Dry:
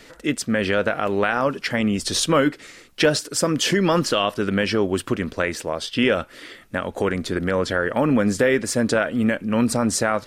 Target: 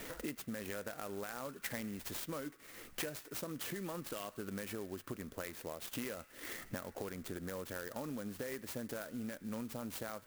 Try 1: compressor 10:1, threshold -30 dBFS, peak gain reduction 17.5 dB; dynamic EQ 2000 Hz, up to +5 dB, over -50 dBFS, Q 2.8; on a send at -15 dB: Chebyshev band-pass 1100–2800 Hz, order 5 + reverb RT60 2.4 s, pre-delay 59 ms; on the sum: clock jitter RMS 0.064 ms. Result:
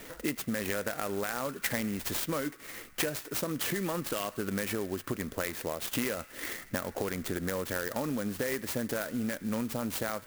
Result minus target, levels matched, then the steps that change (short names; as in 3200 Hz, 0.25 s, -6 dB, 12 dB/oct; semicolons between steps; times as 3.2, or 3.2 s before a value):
compressor: peak gain reduction -9.5 dB
change: compressor 10:1, threshold -40.5 dBFS, peak gain reduction 27 dB